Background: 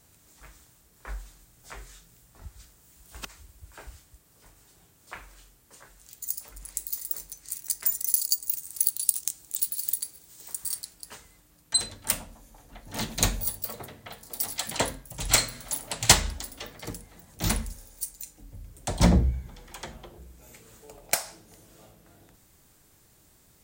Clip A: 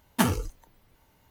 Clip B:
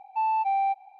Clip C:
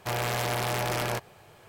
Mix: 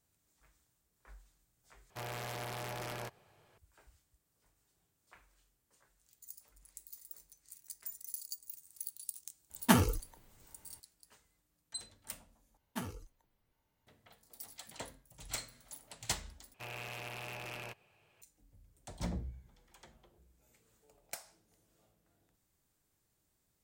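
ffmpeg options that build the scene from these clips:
-filter_complex "[3:a]asplit=2[a][b];[1:a]asplit=2[c][d];[0:a]volume=-19dB[e];[b]equalizer=f=2.6k:w=4.2:g=14[f];[e]asplit=4[g][h][i][j];[g]atrim=end=1.904[k];[a]atrim=end=1.68,asetpts=PTS-STARTPTS,volume=-13dB[l];[h]atrim=start=3.576:end=12.574[m];[d]atrim=end=1.3,asetpts=PTS-STARTPTS,volume=-17.5dB[n];[i]atrim=start=13.866:end=16.544[o];[f]atrim=end=1.68,asetpts=PTS-STARTPTS,volume=-18dB[p];[j]atrim=start=18.216[q];[c]atrim=end=1.3,asetpts=PTS-STARTPTS,volume=-2dB,afade=t=in:d=0.004:c=hsin,afade=t=out:st=1.296:d=0.004:c=hsin,adelay=9500[r];[k][l]acrossfade=d=0.004:c1=hsin:c2=hsin[s];[s][m]acrossfade=d=0.004:c1=hsin:c2=hsin[t];[t][n]acrossfade=d=0.004:c1=hsin:c2=hsin[u];[u][o]acrossfade=d=0.004:c1=hsin:c2=hsin[v];[v][p]acrossfade=d=0.004:c1=hsin:c2=hsin[w];[w][q]acrossfade=d=0.004:c1=hsin:c2=hsin[x];[x][r]amix=inputs=2:normalize=0"

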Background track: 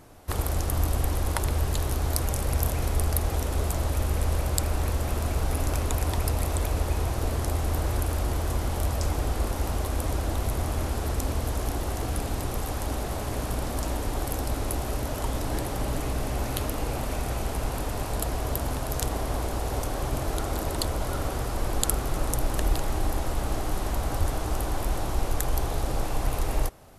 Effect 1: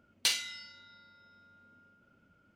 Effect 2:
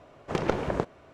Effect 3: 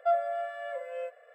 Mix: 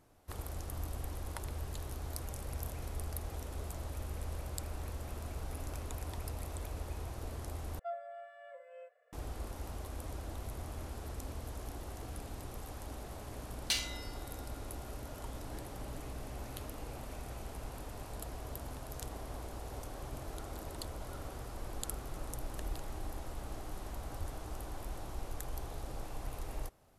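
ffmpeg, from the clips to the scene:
-filter_complex "[0:a]volume=-15dB,asplit=2[a][b];[a]atrim=end=7.794[c];[3:a]atrim=end=1.34,asetpts=PTS-STARTPTS,volume=-15dB[d];[b]atrim=start=9.126[e];[1:a]atrim=end=2.55,asetpts=PTS-STARTPTS,volume=-4.5dB,afade=t=in:d=0.004:c=hsin,afade=t=out:st=2.546:d=0.004:c=hsin,adelay=13450[f];[c][d]acrossfade=d=0.004:c1=hsin:c2=hsin[g];[g][e]acrossfade=d=0.004:c1=hsin:c2=hsin[h];[h][f]amix=inputs=2:normalize=0"

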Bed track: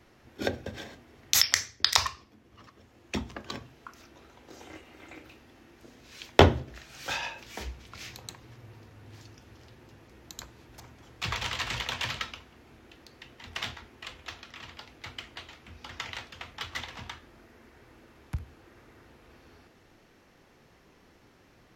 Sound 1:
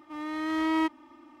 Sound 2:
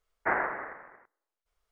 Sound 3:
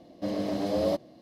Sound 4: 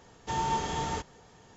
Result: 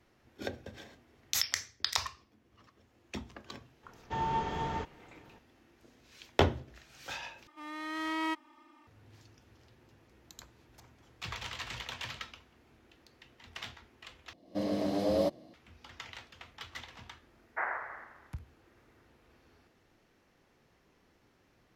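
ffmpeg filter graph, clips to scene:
-filter_complex "[0:a]volume=-8.5dB[a];[4:a]lowpass=2.9k[b];[1:a]tiltshelf=f=740:g=-5.5[c];[3:a]dynaudnorm=f=110:g=3:m=9dB[d];[2:a]highpass=700[e];[a]asplit=3[f][g][h];[f]atrim=end=7.474[i];[c]atrim=end=1.4,asetpts=PTS-STARTPTS,volume=-6.5dB[j];[g]atrim=start=8.866:end=14.334[k];[d]atrim=end=1.21,asetpts=PTS-STARTPTS,volume=-11dB[l];[h]atrim=start=15.536[m];[b]atrim=end=1.56,asetpts=PTS-STARTPTS,volume=-2.5dB,afade=t=in:d=0.004:c=hsin,afade=t=out:st=1.556:d=0.004:c=hsin,adelay=3830[n];[e]atrim=end=1.71,asetpts=PTS-STARTPTS,volume=-5.5dB,afade=t=in:d=0.004:c=hsin,afade=t=out:st=1.706:d=0.004:c=hsin,adelay=17310[o];[i][j]acrossfade=d=0.004:c1=hsin:c2=hsin[p];[p][k]acrossfade=d=0.004:c1=hsin:c2=hsin[q];[q][l]acrossfade=d=0.004:c1=hsin:c2=hsin[r];[r][m]acrossfade=d=0.004:c1=hsin:c2=hsin[s];[s][n][o]amix=inputs=3:normalize=0"

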